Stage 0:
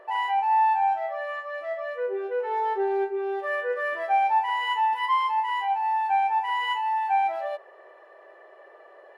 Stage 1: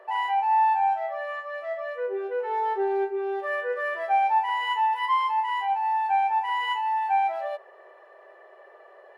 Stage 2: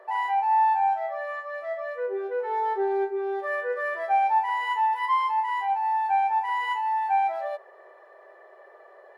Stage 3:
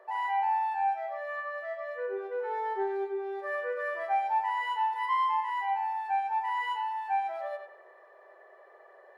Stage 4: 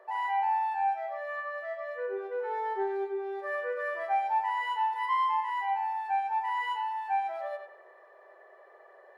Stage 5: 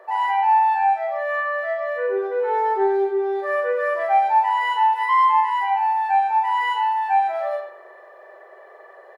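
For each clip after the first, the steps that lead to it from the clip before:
elliptic high-pass filter 360 Hz
parametric band 2,800 Hz −10 dB 0.21 octaves
feedback echo with a band-pass in the loop 94 ms, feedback 42%, band-pass 1,600 Hz, level −3.5 dB; level −5.5 dB
no processing that can be heard
double-tracking delay 41 ms −4 dB; level +8.5 dB

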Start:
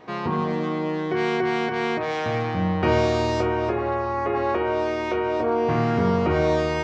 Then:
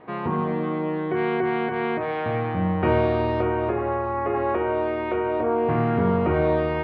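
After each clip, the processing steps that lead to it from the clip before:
Bessel low-pass filter 2,100 Hz, order 6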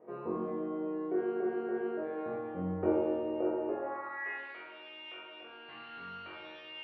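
band-pass filter sweep 460 Hz → 3,700 Hz, 0:03.70–0:04.46
flutter between parallel walls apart 3.8 metres, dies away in 0.96 s
level −5.5 dB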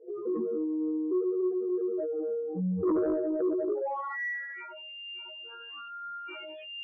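expanding power law on the bin magnitudes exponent 3.9
sine wavefolder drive 4 dB, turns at −21 dBFS
level −1.5 dB

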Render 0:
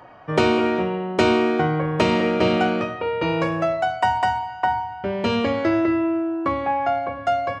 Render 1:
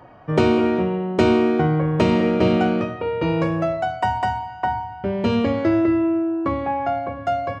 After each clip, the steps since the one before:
low-shelf EQ 460 Hz +9.5 dB
level −4 dB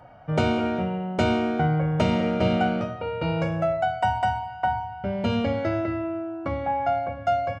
comb filter 1.4 ms, depth 58%
level −4.5 dB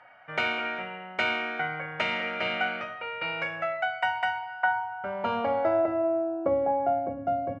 band-pass filter sweep 2,000 Hz → 300 Hz, 0:04.30–0:07.28
level +8.5 dB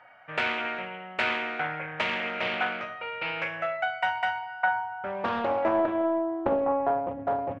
highs frequency-modulated by the lows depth 0.51 ms

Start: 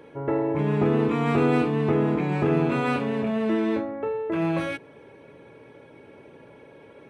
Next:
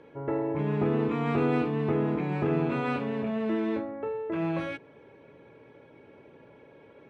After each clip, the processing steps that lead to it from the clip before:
high-frequency loss of the air 86 metres
level −4.5 dB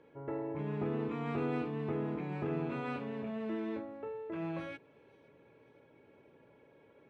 delay with a high-pass on its return 516 ms, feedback 54%, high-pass 3,500 Hz, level −18 dB
level −9 dB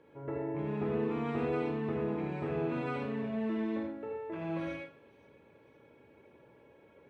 convolution reverb RT60 0.45 s, pre-delay 54 ms, DRR 1.5 dB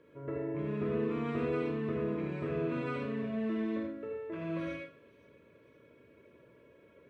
Butterworth band-reject 810 Hz, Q 3.1

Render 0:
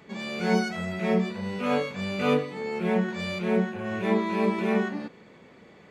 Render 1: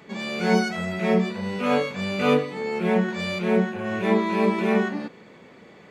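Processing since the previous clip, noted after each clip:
low-shelf EQ 65 Hz −9.5 dB
level +4 dB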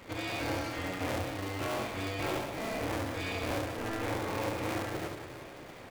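sub-harmonics by changed cycles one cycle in 2, inverted
downward compressor 4 to 1, threshold −33 dBFS, peak gain reduction 15 dB
on a send: reverse bouncing-ball delay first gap 70 ms, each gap 1.6×, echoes 5
on the sum: level −2.5 dB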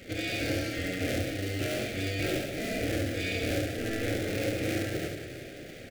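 Butterworth band-reject 1,000 Hz, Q 1
double-tracking delay 50 ms −11.5 dB
level +4.5 dB

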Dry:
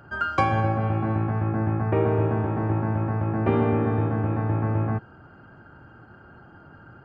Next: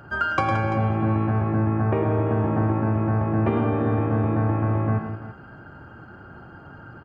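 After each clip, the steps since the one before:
downward compressor, threshold −23 dBFS, peak gain reduction 7.5 dB
on a send: multi-tap delay 106/174/339 ms −8/−11/−13.5 dB
on the sum: level +4 dB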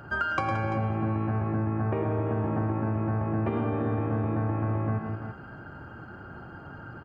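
notch filter 3,400 Hz, Q 24
downward compressor 2.5 to 1, threshold −27 dBFS, peak gain reduction 7.5 dB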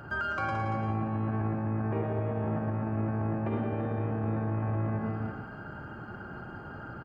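brickwall limiter −24.5 dBFS, peak gain reduction 10 dB
on a send: loudspeakers that aren't time-aligned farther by 38 metres −6 dB, 58 metres −10 dB

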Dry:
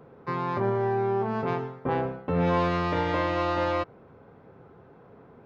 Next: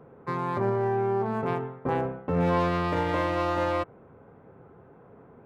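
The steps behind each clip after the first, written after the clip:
adaptive Wiener filter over 9 samples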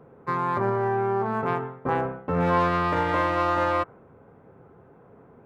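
dynamic equaliser 1,300 Hz, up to +7 dB, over −44 dBFS, Q 1.1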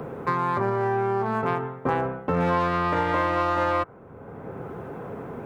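multiband upward and downward compressor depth 70%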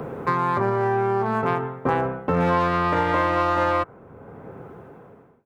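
fade-out on the ending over 1.78 s
level +2.5 dB

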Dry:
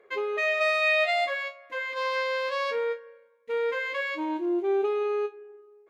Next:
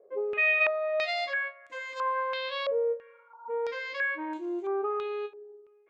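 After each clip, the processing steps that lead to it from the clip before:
healed spectral selection 0:03.09–0:03.48, 680–1,500 Hz both
low-pass on a step sequencer 3 Hz 590–7,500 Hz
level −6.5 dB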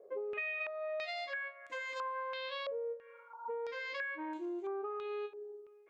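downward compressor 6 to 1, threshold −39 dBFS, peak gain reduction 17 dB
level +1 dB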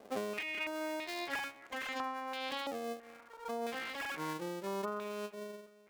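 sub-harmonics by changed cycles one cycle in 2, muted
shaped tremolo triangle 1.7 Hz, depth 45%
level +5.5 dB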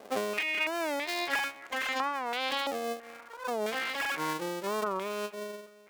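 low-shelf EQ 360 Hz −7.5 dB
wow of a warped record 45 rpm, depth 160 cents
level +8.5 dB

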